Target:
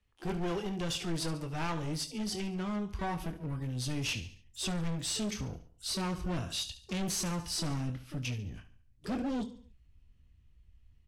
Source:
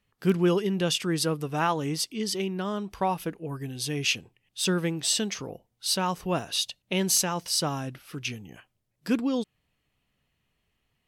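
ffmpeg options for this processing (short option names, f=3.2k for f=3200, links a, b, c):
-filter_complex "[0:a]asubboost=boost=7.5:cutoff=170,acrossover=split=130[a][b];[a]alimiter=level_in=10dB:limit=-24dB:level=0:latency=1:release=266,volume=-10dB[c];[b]asplit=2[d][e];[e]adelay=24,volume=-9.5dB[f];[d][f]amix=inputs=2:normalize=0[g];[c][g]amix=inputs=2:normalize=0,aecho=1:1:71|142|213|284:0.2|0.0838|0.0352|0.0148,asoftclip=type=hard:threshold=-24dB,asplit=2[h][i];[i]asetrate=88200,aresample=44100,atempo=0.5,volume=-12dB[j];[h][j]amix=inputs=2:normalize=0,lowpass=10k,lowshelf=f=100:t=q:w=1.5:g=8.5,volume=-6.5dB"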